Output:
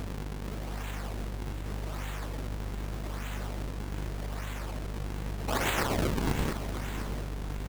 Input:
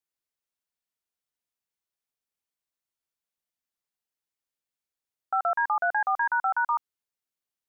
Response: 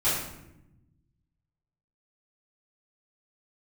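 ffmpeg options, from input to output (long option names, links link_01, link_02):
-filter_complex "[0:a]aeval=exprs='val(0)+0.5*0.00891*sgn(val(0))':channel_layout=same,asplit=3[link_01][link_02][link_03];[link_01]afade=type=out:start_time=5.47:duration=0.02[link_04];[link_02]aemphasis=mode=production:type=riaa,afade=type=in:start_time=5.47:duration=0.02,afade=type=out:start_time=6.5:duration=0.02[link_05];[link_03]afade=type=in:start_time=6.5:duration=0.02[link_06];[link_04][link_05][link_06]amix=inputs=3:normalize=0,afftfilt=real='re*lt(hypot(re,im),0.0398)':imag='im*lt(hypot(re,im),0.0398)':win_size=1024:overlap=0.75,acrossover=split=750|830[link_07][link_08][link_09];[link_07]alimiter=level_in=26dB:limit=-24dB:level=0:latency=1:release=71,volume=-26dB[link_10];[link_10][link_08][link_09]amix=inputs=3:normalize=0,aeval=exprs='val(0)+0.00708*(sin(2*PI*50*n/s)+sin(2*PI*2*50*n/s)/2+sin(2*PI*3*50*n/s)/3+sin(2*PI*4*50*n/s)/4+sin(2*PI*5*50*n/s)/5)':channel_layout=same,acrusher=samples=41:mix=1:aa=0.000001:lfo=1:lforange=65.6:lforate=0.83,aecho=1:1:702:0.282,volume=7dB"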